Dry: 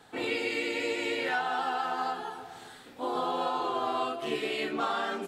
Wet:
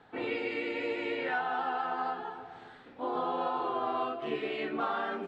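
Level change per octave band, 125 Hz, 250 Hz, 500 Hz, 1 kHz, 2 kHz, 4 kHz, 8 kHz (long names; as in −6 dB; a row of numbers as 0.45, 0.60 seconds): −1.5 dB, −1.5 dB, −1.5 dB, −1.5 dB, −3.5 dB, −8.0 dB, below −20 dB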